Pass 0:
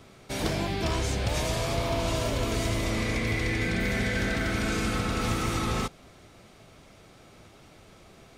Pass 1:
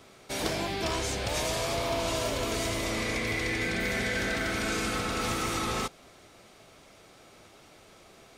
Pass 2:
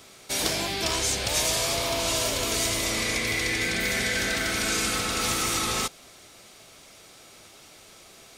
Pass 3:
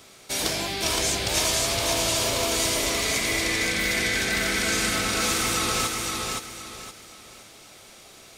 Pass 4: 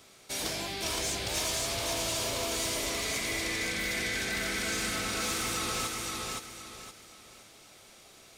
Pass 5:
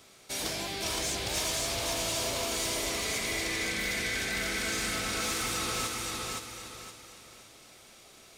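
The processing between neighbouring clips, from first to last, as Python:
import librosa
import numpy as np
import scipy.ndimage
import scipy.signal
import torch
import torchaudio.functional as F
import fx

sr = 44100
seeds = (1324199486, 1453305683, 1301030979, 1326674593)

y1 = fx.bass_treble(x, sr, bass_db=-8, treble_db=2)
y2 = fx.high_shelf(y1, sr, hz=2800.0, db=11.5)
y3 = fx.echo_feedback(y2, sr, ms=517, feedback_pct=31, wet_db=-3.0)
y4 = 10.0 ** (-17.0 / 20.0) * np.tanh(y3 / 10.0 ** (-17.0 / 20.0))
y4 = y4 * librosa.db_to_amplitude(-6.5)
y5 = fx.echo_feedback(y4, sr, ms=282, feedback_pct=53, wet_db=-12.5)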